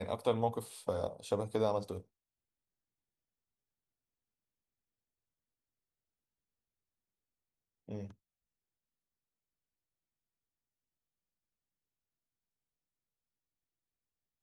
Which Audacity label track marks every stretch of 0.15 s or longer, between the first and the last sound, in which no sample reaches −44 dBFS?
2.010000	7.890000	silence